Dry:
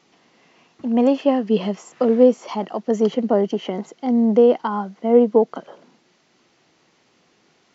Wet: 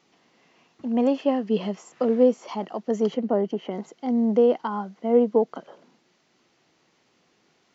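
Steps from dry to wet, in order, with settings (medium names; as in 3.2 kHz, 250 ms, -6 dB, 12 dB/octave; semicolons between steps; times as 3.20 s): 3.16–3.70 s: treble shelf 4.4 kHz -> 2.9 kHz -10.5 dB; trim -5 dB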